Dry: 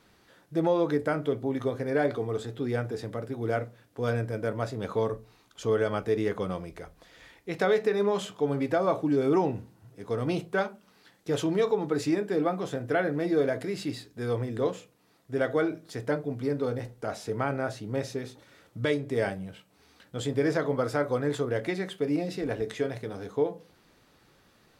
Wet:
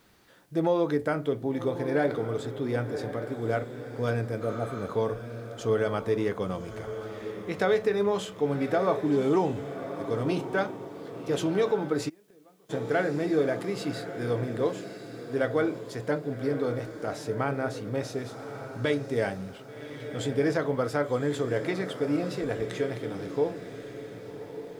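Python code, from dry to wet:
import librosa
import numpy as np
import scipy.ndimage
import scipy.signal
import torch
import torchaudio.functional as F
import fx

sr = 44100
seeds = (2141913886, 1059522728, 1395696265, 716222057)

y = fx.spec_repair(x, sr, seeds[0], start_s=4.44, length_s=0.4, low_hz=910.0, high_hz=7700.0, source='after')
y = fx.echo_diffused(y, sr, ms=1127, feedback_pct=41, wet_db=-10)
y = fx.gate_flip(y, sr, shuts_db=-23.0, range_db=-31, at=(12.08, 12.69), fade=0.02)
y = fx.quant_dither(y, sr, seeds[1], bits=12, dither='triangular')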